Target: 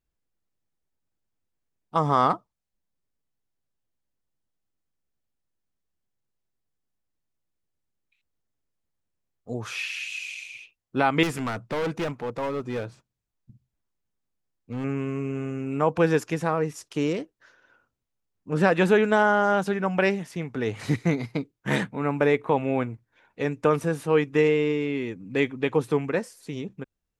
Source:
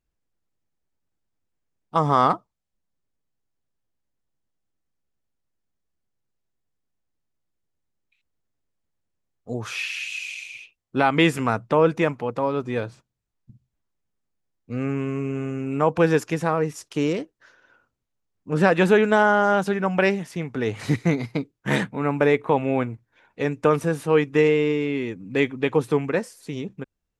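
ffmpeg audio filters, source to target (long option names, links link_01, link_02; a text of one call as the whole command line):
ffmpeg -i in.wav -filter_complex "[0:a]asettb=1/sr,asplit=3[link_01][link_02][link_03];[link_01]atrim=end=11.234[link_04];[link_02]atrim=start=11.23:end=14.84,asetpts=PTS-STARTPTS,afade=type=in:duration=0.004:curve=qsin,afade=type=out:start_time=3.606:duration=0.004:curve=qsin,asoftclip=type=hard:threshold=-22dB[link_05];[link_03]atrim=start=14.836[link_06];[link_04][link_05]acrossfade=duration=0.004:curve1=hsin:curve2=qsin[link_07];[link_07][link_06]acrossfade=duration=0.004:curve1=qsin:curve2=hsin,volume=-2.5dB" out.wav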